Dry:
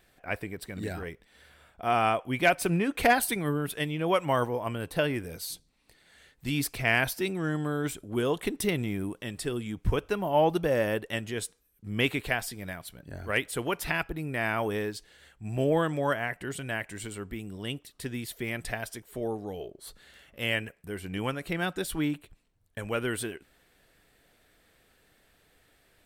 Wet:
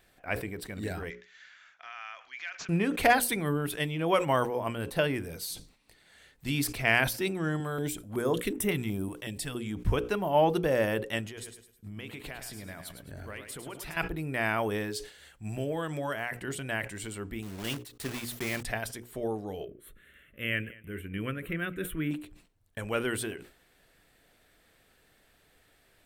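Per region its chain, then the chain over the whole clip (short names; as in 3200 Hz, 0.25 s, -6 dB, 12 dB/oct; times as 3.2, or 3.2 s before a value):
1.1–2.69 compressor, threshold -37 dBFS + resonant high-pass 1700 Hz, resonance Q 2 + careless resampling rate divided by 3×, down none, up filtered
7.6–9.55 high shelf 12000 Hz +6 dB + stepped notch 5.4 Hz 250–4400 Hz
11.26–13.97 compressor 12:1, threshold -37 dBFS + feedback echo 0.105 s, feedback 35%, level -8 dB
14.9–16.41 high shelf 3000 Hz +5.5 dB + compressor 3:1, threshold -30 dBFS
17.42–18.67 block floating point 3-bit + gate -54 dBFS, range -13 dB
19.65–22.11 bell 6600 Hz -11 dB 1.2 oct + fixed phaser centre 2000 Hz, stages 4 + feedback echo 0.212 s, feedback 37%, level -23 dB
whole clip: notches 60/120/180/240/300/360/420/480/540 Hz; sustainer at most 130 dB/s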